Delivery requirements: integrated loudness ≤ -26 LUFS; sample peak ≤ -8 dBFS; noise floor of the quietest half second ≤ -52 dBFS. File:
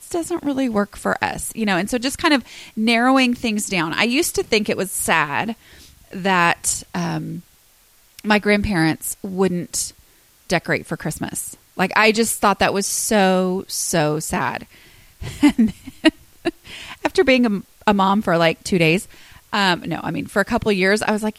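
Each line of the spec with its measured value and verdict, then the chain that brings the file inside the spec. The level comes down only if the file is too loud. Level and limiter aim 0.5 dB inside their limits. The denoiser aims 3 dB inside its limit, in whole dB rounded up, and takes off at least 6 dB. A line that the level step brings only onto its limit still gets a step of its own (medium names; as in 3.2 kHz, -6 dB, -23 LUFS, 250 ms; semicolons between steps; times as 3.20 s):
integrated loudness -19.0 LUFS: fail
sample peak -2.5 dBFS: fail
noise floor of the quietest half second -54 dBFS: pass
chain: trim -7.5 dB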